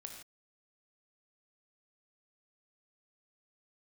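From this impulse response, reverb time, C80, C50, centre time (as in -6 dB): not exponential, 6.5 dB, 4.5 dB, 31 ms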